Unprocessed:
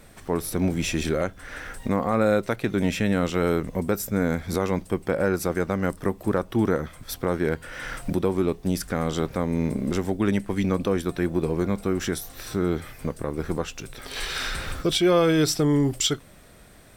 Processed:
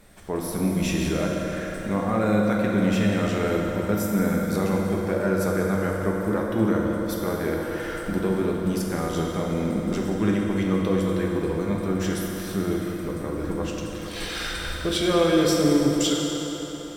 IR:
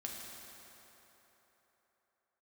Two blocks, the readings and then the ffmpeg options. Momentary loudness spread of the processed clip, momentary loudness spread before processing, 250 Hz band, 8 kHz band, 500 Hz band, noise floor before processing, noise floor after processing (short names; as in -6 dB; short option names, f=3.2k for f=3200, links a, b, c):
9 LU, 10 LU, +2.0 dB, -1.0 dB, 0.0 dB, -49 dBFS, -33 dBFS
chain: -filter_complex "[1:a]atrim=start_sample=2205,asetrate=39249,aresample=44100[a];[0:a][a]afir=irnorm=-1:irlink=0"